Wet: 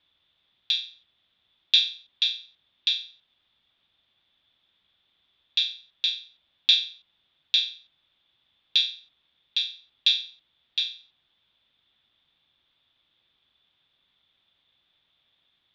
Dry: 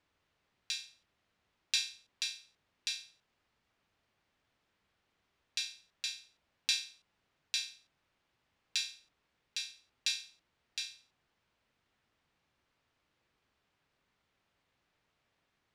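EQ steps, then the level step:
low-pass with resonance 3,500 Hz, resonance Q 16
notch filter 440 Hz, Q 12
0.0 dB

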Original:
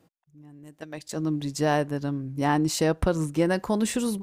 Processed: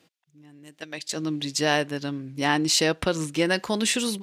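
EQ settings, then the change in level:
meter weighting curve D
0.0 dB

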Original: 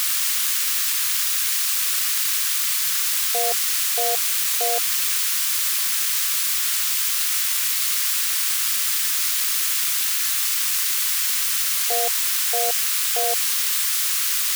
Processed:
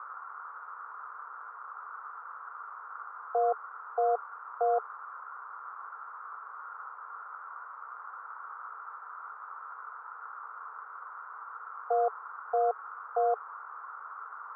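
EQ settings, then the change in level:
Chebyshev band-pass filter 430–1,400 Hz, order 5
0.0 dB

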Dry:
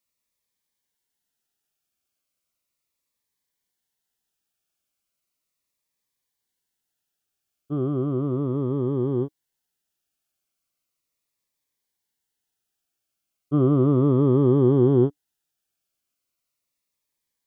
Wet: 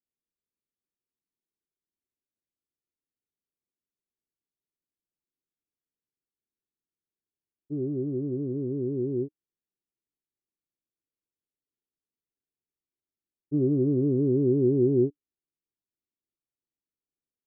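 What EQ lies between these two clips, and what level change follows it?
transistor ladder low-pass 460 Hz, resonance 40%
0.0 dB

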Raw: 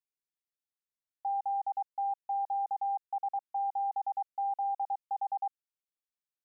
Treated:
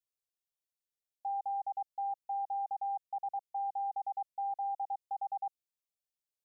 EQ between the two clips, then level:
parametric band 990 Hz −13.5 dB 0.25 octaves
phaser with its sweep stopped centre 620 Hz, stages 4
0.0 dB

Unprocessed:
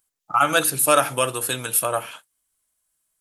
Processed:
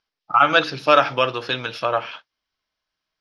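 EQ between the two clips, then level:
elliptic low-pass filter 5,300 Hz, stop band 40 dB
low-shelf EQ 240 Hz −4.5 dB
+4.0 dB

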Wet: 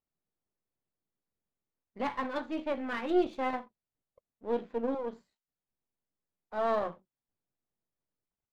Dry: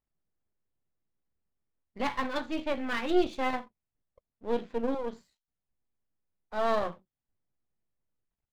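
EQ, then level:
low-shelf EQ 110 Hz −11.5 dB
high-shelf EQ 2,300 Hz −11 dB
0.0 dB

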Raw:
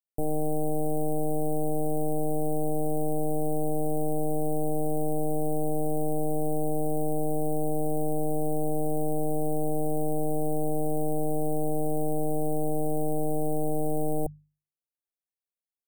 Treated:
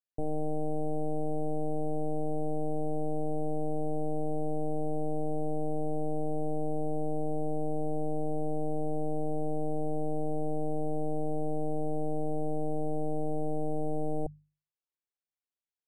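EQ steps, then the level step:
high-frequency loss of the air 110 metres
−4.0 dB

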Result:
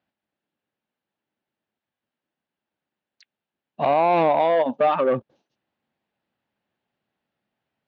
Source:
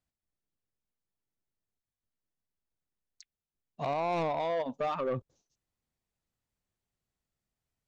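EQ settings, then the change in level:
loudspeaker in its box 160–3,800 Hz, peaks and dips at 220 Hz +5 dB, 320 Hz +4 dB, 580 Hz +5 dB, 830 Hz +6 dB, 1,600 Hz +5 dB, 2,800 Hz +3 dB
+8.5 dB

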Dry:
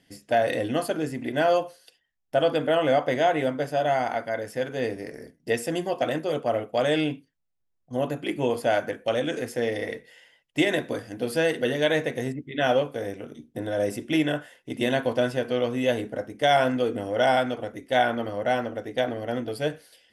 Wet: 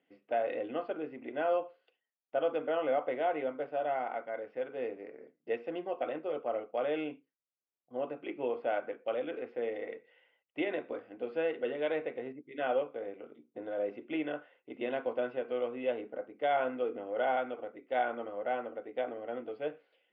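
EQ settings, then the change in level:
high-frequency loss of the air 140 metres
loudspeaker in its box 460–2,400 Hz, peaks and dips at 650 Hz −5 dB, 960 Hz −6 dB, 2,000 Hz −3 dB
parametric band 1,700 Hz −12.5 dB 0.29 octaves
−3.5 dB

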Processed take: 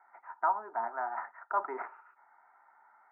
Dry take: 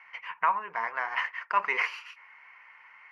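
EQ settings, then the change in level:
Chebyshev band-pass filter 230–1,300 Hz, order 4
phaser with its sweep stopped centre 730 Hz, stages 8
+5.0 dB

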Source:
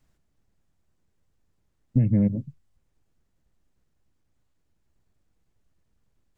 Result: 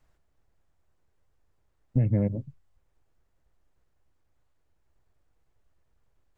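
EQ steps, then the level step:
parametric band 210 Hz −10 dB 1.4 octaves
low-shelf EQ 330 Hz −5.5 dB
high-shelf EQ 2,000 Hz −11.5 dB
+7.0 dB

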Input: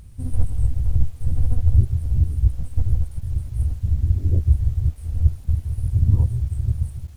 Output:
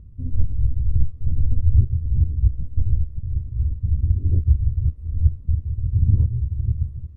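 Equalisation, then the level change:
moving average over 57 samples
0.0 dB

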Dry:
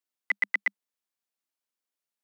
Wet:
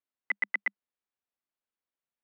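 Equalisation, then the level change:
high-frequency loss of the air 340 metres
0.0 dB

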